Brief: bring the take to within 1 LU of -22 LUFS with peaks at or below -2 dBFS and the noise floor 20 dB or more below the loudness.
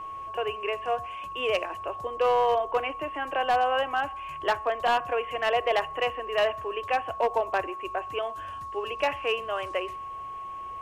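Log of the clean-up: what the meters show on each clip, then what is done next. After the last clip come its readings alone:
clipped samples 0.7%; clipping level -17.5 dBFS; steady tone 1.1 kHz; tone level -35 dBFS; loudness -28.5 LUFS; peak level -17.5 dBFS; loudness target -22.0 LUFS
-> clip repair -17.5 dBFS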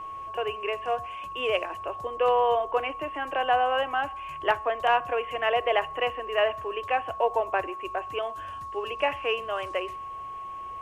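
clipped samples 0.0%; steady tone 1.1 kHz; tone level -35 dBFS
-> band-stop 1.1 kHz, Q 30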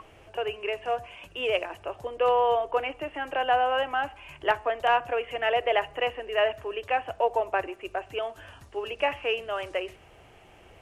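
steady tone not found; loudness -28.0 LUFS; peak level -9.5 dBFS; loudness target -22.0 LUFS
-> trim +6 dB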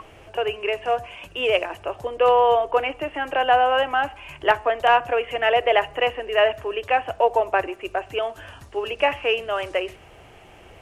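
loudness -22.0 LUFS; peak level -3.5 dBFS; noise floor -48 dBFS

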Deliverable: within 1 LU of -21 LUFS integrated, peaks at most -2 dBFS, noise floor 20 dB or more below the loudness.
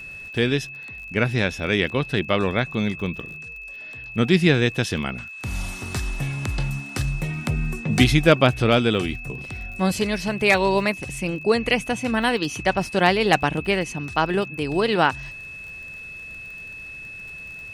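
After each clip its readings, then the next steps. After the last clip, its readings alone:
tick rate 35 per s; steady tone 2.6 kHz; tone level -35 dBFS; loudness -22.0 LUFS; peak level -1.5 dBFS; loudness target -21.0 LUFS
-> de-click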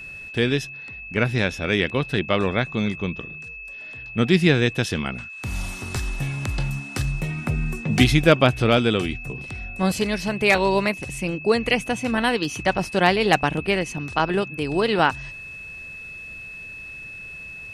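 tick rate 0.056 per s; steady tone 2.6 kHz; tone level -35 dBFS
-> band-stop 2.6 kHz, Q 30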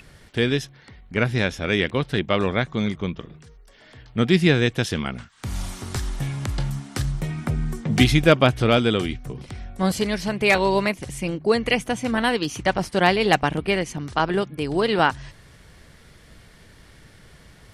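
steady tone not found; loudness -22.5 LUFS; peak level -1.5 dBFS; loudness target -21.0 LUFS
-> trim +1.5 dB; peak limiter -2 dBFS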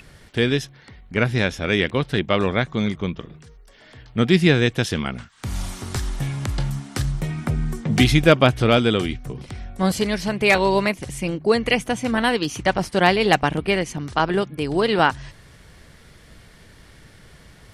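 loudness -21.0 LUFS; peak level -2.0 dBFS; noise floor -49 dBFS

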